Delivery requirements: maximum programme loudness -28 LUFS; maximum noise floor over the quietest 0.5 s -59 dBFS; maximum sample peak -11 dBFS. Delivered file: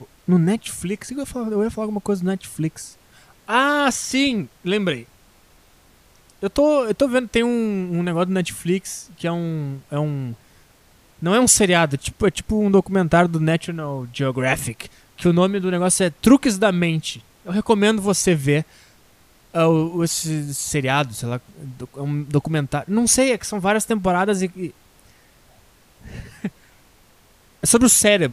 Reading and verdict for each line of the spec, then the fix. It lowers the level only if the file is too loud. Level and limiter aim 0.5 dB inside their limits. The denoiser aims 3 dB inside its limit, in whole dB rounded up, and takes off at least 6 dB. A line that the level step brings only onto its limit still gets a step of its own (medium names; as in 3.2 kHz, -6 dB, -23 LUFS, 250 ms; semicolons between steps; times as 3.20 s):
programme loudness -20.0 LUFS: fail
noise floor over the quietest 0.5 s -54 dBFS: fail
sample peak -1.5 dBFS: fail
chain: trim -8.5 dB; peak limiter -11.5 dBFS